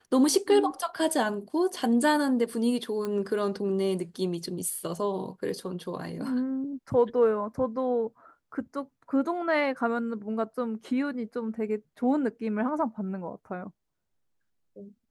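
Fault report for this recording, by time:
3.05 s: pop -20 dBFS

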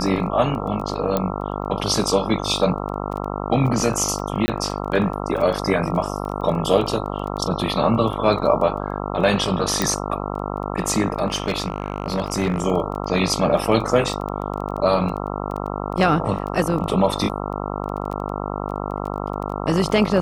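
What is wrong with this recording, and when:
buzz 50 Hz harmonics 27 -27 dBFS
crackle 11 per s -28 dBFS
1.17 s: pop -7 dBFS
4.46–4.48 s: dropout 20 ms
9.82 s: pop
11.26–12.62 s: clipped -16 dBFS

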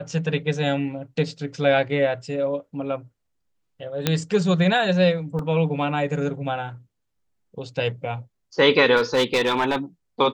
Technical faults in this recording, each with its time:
4.07 s: pop -4 dBFS
5.39 s: dropout 2.5 ms
8.96–9.76 s: clipped -15 dBFS

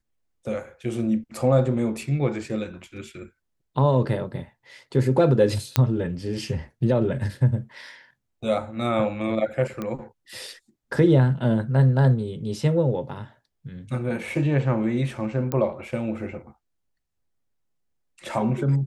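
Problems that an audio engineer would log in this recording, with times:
5.76 s: pop -4 dBFS
9.82 s: pop -17 dBFS
15.52 s: pop -13 dBFS

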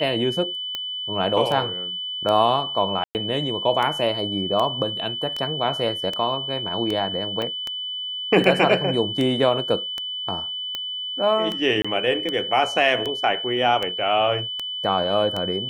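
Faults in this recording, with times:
tick 78 rpm -13 dBFS
whine 3 kHz -27 dBFS
3.04–3.15 s: dropout 109 ms
7.42 s: dropout 2 ms
11.82–11.85 s: dropout 25 ms

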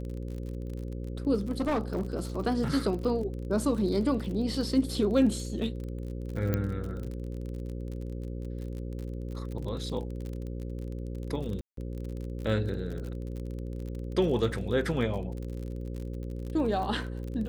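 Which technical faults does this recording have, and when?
buzz 60 Hz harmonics 9 -36 dBFS
crackle 39 per s -36 dBFS
1.39–2.01 s: clipped -24 dBFS
6.54 s: pop -15 dBFS
11.61–11.77 s: dropout 163 ms

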